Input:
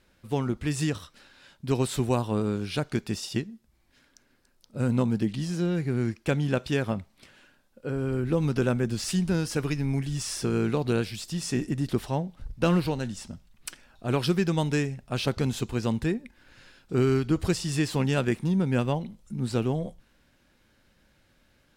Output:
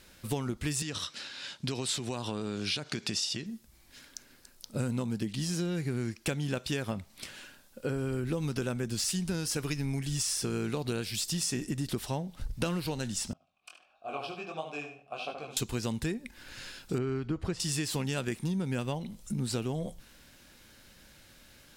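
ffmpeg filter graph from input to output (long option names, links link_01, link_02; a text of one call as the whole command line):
ffmpeg -i in.wav -filter_complex "[0:a]asettb=1/sr,asplit=3[link_01][link_02][link_03];[link_01]atrim=end=0.824[link_04];[link_02]atrim=start=0.82:end=3.46,asetpts=PTS-STARTPTS,afade=type=in:duration=0.004:curve=qsin,afade=type=out:start_time=2.636:duration=0.004:curve=qsin,acompressor=threshold=-30dB:ratio=6:attack=3.2:release=140:knee=1:detection=peak,highpass=110,lowpass=4900,highshelf=frequency=3100:gain=9[link_05];[link_03]atrim=start=3.456[link_06];[link_04][link_05]acrossfade=duration=0.004:curve1=hsin:curve2=qsin[link_07];[link_07][link_06]acrossfade=duration=0.004:curve1=qsin:curve2=hsin,asettb=1/sr,asplit=3[link_08][link_09][link_10];[link_08]atrim=end=13.334[link_11];[link_09]atrim=start=13.33:end=15.57,asetpts=PTS-STARTPTS,afade=type=in:duration=0.004:curve=qsin,afade=type=out:start_time=2.236:duration=0.004:curve=qsin,asplit=2[link_12][link_13];[link_13]adelay=74,lowpass=frequency=3700:poles=1,volume=-6dB,asplit=2[link_14][link_15];[link_15]adelay=74,lowpass=frequency=3700:poles=1,volume=0.3,asplit=2[link_16][link_17];[link_17]adelay=74,lowpass=frequency=3700:poles=1,volume=0.3,asplit=2[link_18][link_19];[link_19]adelay=74,lowpass=frequency=3700:poles=1,volume=0.3[link_20];[link_12][link_14][link_16][link_18][link_20]amix=inputs=5:normalize=0,atrim=end_sample=98784,flanger=delay=18.5:depth=6.2:speed=1.5,asplit=3[link_21][link_22][link_23];[link_21]bandpass=frequency=730:width_type=q:width=8,volume=0dB[link_24];[link_22]bandpass=frequency=1090:width_type=q:width=8,volume=-6dB[link_25];[link_23]bandpass=frequency=2440:width_type=q:width=8,volume=-9dB[link_26];[link_24][link_25][link_26]amix=inputs=3:normalize=0[link_27];[link_10]atrim=start=15.566[link_28];[link_11][link_27]acrossfade=duration=0.004:curve1=hsin:curve2=qsin[link_29];[link_29][link_28]acrossfade=duration=0.004:curve1=qsin:curve2=hsin,asettb=1/sr,asplit=3[link_30][link_31][link_32];[link_30]atrim=end=16.984[link_33];[link_31]atrim=start=16.98:end=17.6,asetpts=PTS-STARTPTS,afade=type=in:duration=0.004:curve=qsin,afade=type=out:start_time=0.616:duration=0.004:curve=qsin,lowpass=1500,aemphasis=mode=production:type=75fm[link_34];[link_32]atrim=start=17.596[link_35];[link_33][link_34]acrossfade=duration=0.004:curve1=hsin:curve2=qsin[link_36];[link_36][link_35]acrossfade=duration=0.004:curve1=qsin:curve2=hsin,highshelf=frequency=3300:gain=11,acompressor=threshold=-35dB:ratio=6,volume=5dB" out.wav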